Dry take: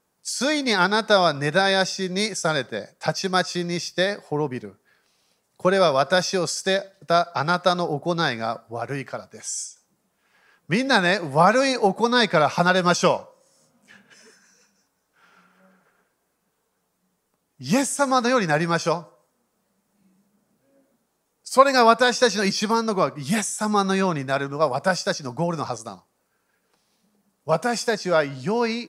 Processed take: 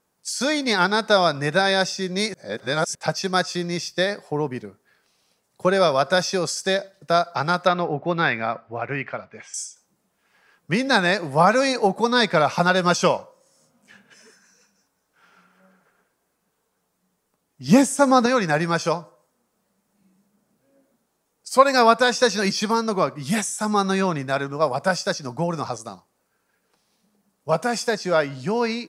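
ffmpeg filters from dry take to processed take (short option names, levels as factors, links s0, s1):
-filter_complex "[0:a]asettb=1/sr,asplit=3[s0][s1][s2];[s0]atrim=end=7.674[s3];[s1]atrim=start=7.67:end=9.54,asetpts=PTS-STARTPTS,afade=t=in:d=0.004:c=qsin,afade=t=out:st=1.866:d=0.004:c=qsin,lowpass=f=2400:t=q:w=2.5[s4];[s2]atrim=start=9.536[s5];[s3][s4]acrossfade=d=0.004:c1=hsin:c2=qsin[s6];[s6][s5]acrossfade=d=0.004:c1=qsin:c2=hsin,asettb=1/sr,asplit=3[s7][s8][s9];[s7]atrim=end=17.684[s10];[s8]atrim=start=17.68:end=18.26,asetpts=PTS-STARTPTS,afade=t=in:d=0.004:c=qsin,afade=t=out:st=0.576:d=0.004:c=qsin,equalizer=f=280:t=o:w=2.9:g=7[s11];[s9]atrim=start=18.256[s12];[s10][s11]acrossfade=d=0.004:c1=hsin:c2=qsin[s13];[s13][s12]acrossfade=d=0.004:c1=qsin:c2=hsin,asplit=3[s14][s15][s16];[s14]atrim=end=2.342[s17];[s15]atrim=start=2.338:end=2.952,asetpts=PTS-STARTPTS,areverse[s18];[s16]atrim=start=2.948[s19];[s17][s18]acrossfade=d=0.004:c1=hsin:c2=hsin[s20];[s20][s19]acrossfade=d=0.004:c1=hsin:c2=hsin"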